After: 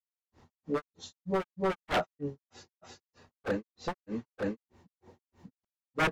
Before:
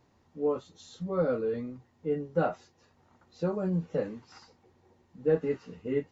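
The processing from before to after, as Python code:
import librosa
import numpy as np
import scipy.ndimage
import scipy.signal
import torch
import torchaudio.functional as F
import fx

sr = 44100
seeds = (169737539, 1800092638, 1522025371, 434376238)

y = 10.0 ** (-28.0 / 20.0) * (np.abs((x / 10.0 ** (-28.0 / 20.0) + 3.0) % 4.0 - 2.0) - 1.0)
y = fx.granulator(y, sr, seeds[0], grain_ms=197.0, per_s=3.2, spray_ms=755.0, spread_st=0)
y = y * librosa.db_to_amplitude(8.0)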